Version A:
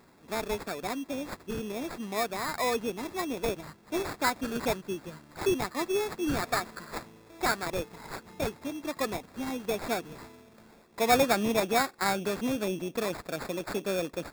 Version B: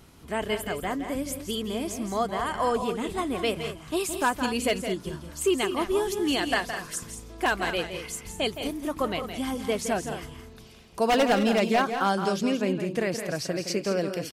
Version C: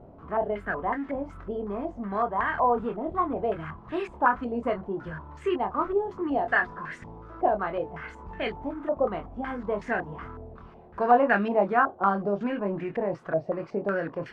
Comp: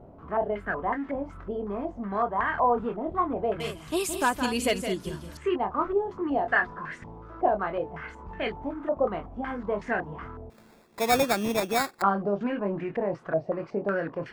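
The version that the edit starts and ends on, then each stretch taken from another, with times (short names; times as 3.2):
C
3.6–5.37 from B
10.5–12.02 from A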